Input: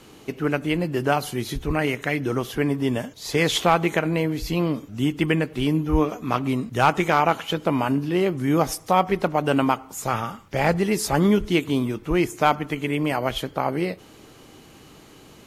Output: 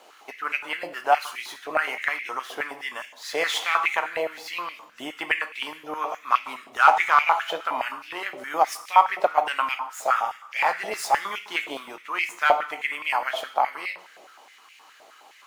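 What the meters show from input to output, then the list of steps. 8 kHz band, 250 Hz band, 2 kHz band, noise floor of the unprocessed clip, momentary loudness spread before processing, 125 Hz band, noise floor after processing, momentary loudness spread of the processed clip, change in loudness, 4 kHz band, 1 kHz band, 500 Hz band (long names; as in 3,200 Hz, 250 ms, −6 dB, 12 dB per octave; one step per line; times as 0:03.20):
−5.0 dB, −22.0 dB, +3.0 dB, −48 dBFS, 7 LU, below −30 dB, −52 dBFS, 14 LU, −2.0 dB, −2.0 dB, +2.5 dB, −7.0 dB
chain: running median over 3 samples
coupled-rooms reverb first 0.66 s, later 2 s, DRR 7.5 dB
high-pass on a step sequencer 9.6 Hz 660–2,300 Hz
level −4 dB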